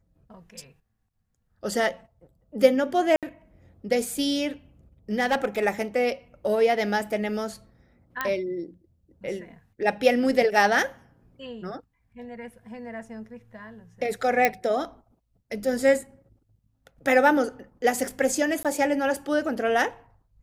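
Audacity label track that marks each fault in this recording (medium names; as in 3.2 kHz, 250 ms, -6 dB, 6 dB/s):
3.160000	3.230000	dropout 67 ms
5.190000	5.650000	clipped -18 dBFS
8.210000	8.210000	pop -12 dBFS
14.450000	14.450000	pop -6 dBFS
18.630000	18.650000	dropout 17 ms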